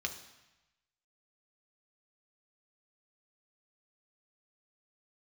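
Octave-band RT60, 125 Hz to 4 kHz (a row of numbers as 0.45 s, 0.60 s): 1.2 s, 0.95 s, 0.95 s, 1.1 s, 1.1 s, 1.0 s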